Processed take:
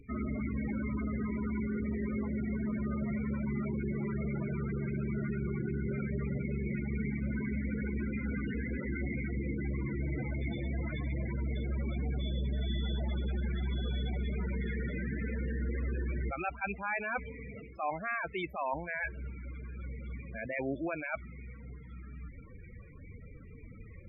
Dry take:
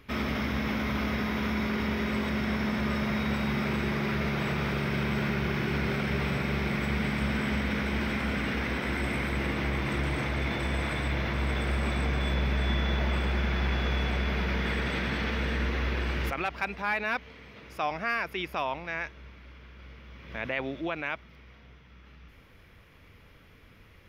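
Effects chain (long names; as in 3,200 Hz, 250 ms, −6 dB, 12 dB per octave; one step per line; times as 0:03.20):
reversed playback
downward compressor 6 to 1, threshold −38 dBFS, peak gain reduction 13.5 dB
reversed playback
spectral peaks only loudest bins 16
level +7.5 dB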